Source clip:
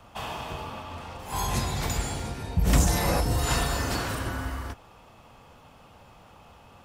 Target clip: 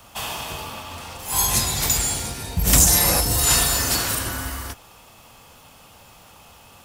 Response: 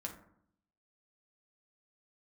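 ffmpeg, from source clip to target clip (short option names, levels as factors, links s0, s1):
-af "crystalizer=i=4.5:c=0,acrusher=bits=6:mode=log:mix=0:aa=0.000001,volume=1.12"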